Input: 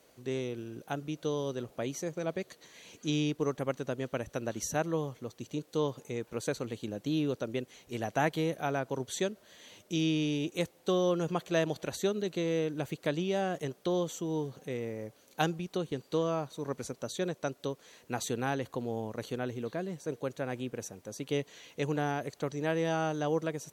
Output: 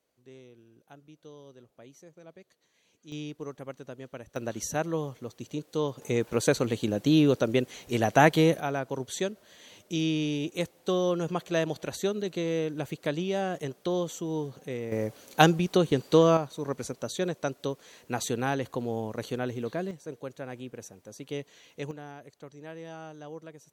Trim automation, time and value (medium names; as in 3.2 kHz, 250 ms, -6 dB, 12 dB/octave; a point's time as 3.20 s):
-16 dB
from 3.12 s -7.5 dB
from 4.36 s +1.5 dB
from 6.02 s +9.5 dB
from 8.60 s +1.5 dB
from 14.92 s +10.5 dB
from 16.37 s +3.5 dB
from 19.91 s -3.5 dB
from 21.91 s -12 dB